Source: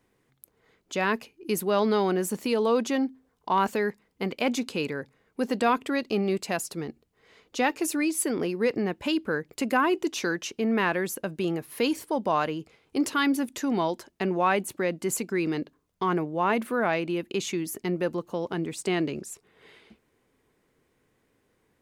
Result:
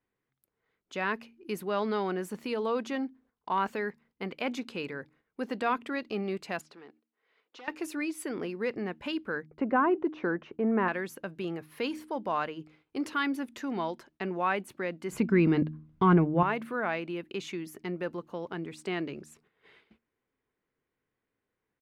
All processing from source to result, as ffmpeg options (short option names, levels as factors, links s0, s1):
-filter_complex "[0:a]asettb=1/sr,asplit=3[s0][s1][s2];[s0]atrim=end=6.614[s3];[s1]atrim=start=6.61:end=7.68,asetpts=PTS-STARTPTS,afade=t=in:d=0.004:c=qsin,afade=t=out:st=1.066:d=0.004:c=qsin,acompressor=threshold=0.0158:ratio=4:attack=3.2:release=140:knee=1:detection=peak,aeval=exprs='0.0224*(abs(mod(val(0)/0.0224+3,4)-2)-1)':c=same,highpass=340,lowpass=5000[s4];[s2]atrim=start=7.676[s5];[s3][s4]acrossfade=d=0.004:c1=hsin:c2=qsin[s6];[s6][s5]acrossfade=d=0.004:c1=qsin:c2=hsin,asettb=1/sr,asplit=3[s7][s8][s9];[s7]atrim=end=9.464[s10];[s8]atrim=start=9.46:end=10.88,asetpts=PTS-STARTPTS,afade=t=in:d=0.004:c=qsin,afade=t=out:st=1.416:d=0.004:c=qsin,agate=range=0.0224:threshold=0.00398:ratio=3:release=100:detection=peak,lowpass=1100,acontrast=48[s11];[s9]atrim=start=10.876[s12];[s10][s11]acrossfade=d=0.004:c1=hsin:c2=qsin[s13];[s13][s12]acrossfade=d=0.004:c1=qsin:c2=hsin,asettb=1/sr,asplit=3[s14][s15][s16];[s14]atrim=end=15.124[s17];[s15]atrim=start=15.12:end=16.43,asetpts=PTS-STARTPTS,afade=t=in:d=0.004:c=qsin,afade=t=out:st=1.306:d=0.004:c=qsin,bass=f=250:g=14,treble=f=4000:g=-10,acontrast=79,bandreject=f=1800:w=22[s18];[s16]atrim=start=16.426[s19];[s17][s18]acrossfade=d=0.004:c1=hsin:c2=qsin[s20];[s20][s19]acrossfade=d=0.004:c1=qsin:c2=hsin,bandreject=f=77.17:t=h:w=4,bandreject=f=154.34:t=h:w=4,bandreject=f=231.51:t=h:w=4,bandreject=f=308.68:t=h:w=4,agate=range=0.355:threshold=0.00178:ratio=16:detection=peak,firequalizer=gain_entry='entry(570,0);entry(1400,4);entry(7100,-8)':delay=0.05:min_phase=1,volume=0.447"